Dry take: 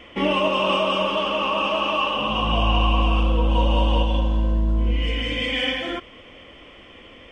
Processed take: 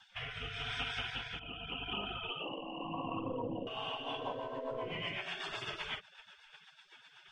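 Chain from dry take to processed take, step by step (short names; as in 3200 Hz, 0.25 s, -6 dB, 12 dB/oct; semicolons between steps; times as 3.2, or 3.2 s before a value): 1.39–3.67 formant sharpening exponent 2; LPF 1000 Hz 6 dB/oct; spectral gate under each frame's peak -25 dB weak; compressor 6:1, threshold -50 dBFS, peak gain reduction 14.5 dB; rotary speaker horn 0.85 Hz, later 8 Hz, at 3.52; gain +15 dB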